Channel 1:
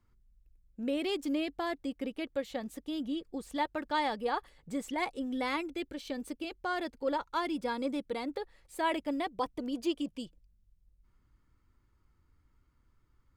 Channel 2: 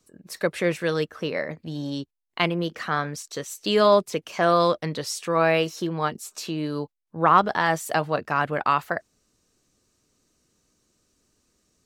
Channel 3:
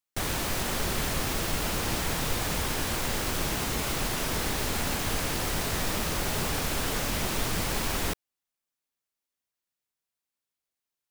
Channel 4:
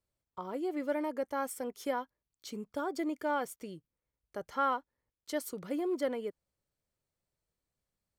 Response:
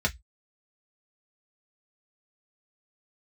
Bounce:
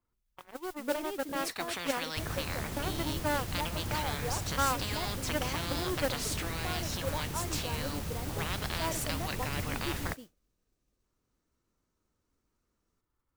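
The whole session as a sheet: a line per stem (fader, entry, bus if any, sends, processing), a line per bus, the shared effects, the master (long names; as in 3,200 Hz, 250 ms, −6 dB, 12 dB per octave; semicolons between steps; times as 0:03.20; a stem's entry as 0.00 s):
−16.0 dB, 0.00 s, no send, parametric band 670 Hz +11 dB 3 octaves
−12.0 dB, 1.15 s, no send, noise gate with hold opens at −40 dBFS; high-shelf EQ 3,200 Hz −10.5 dB; every bin compressed towards the loudest bin 10 to 1
−14.0 dB, 2.00 s, no send, parametric band 95 Hz +13.5 dB 2.5 octaves
+0.5 dB, 0.00 s, no send, harmonic generator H 7 −16 dB, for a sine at −19.5 dBFS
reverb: not used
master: noise that follows the level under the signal 13 dB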